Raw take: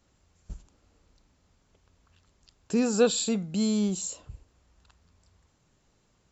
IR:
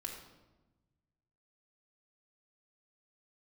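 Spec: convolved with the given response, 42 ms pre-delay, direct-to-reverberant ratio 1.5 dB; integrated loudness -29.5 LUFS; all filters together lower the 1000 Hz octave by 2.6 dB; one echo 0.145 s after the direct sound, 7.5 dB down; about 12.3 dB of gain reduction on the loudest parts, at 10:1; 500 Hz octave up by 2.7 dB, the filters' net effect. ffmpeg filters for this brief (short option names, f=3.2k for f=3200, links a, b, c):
-filter_complex "[0:a]equalizer=f=500:t=o:g=4,equalizer=f=1k:t=o:g=-6.5,acompressor=threshold=-26dB:ratio=10,aecho=1:1:145:0.422,asplit=2[a][b];[1:a]atrim=start_sample=2205,adelay=42[c];[b][c]afir=irnorm=-1:irlink=0,volume=0dB[d];[a][d]amix=inputs=2:normalize=0,volume=-0.5dB"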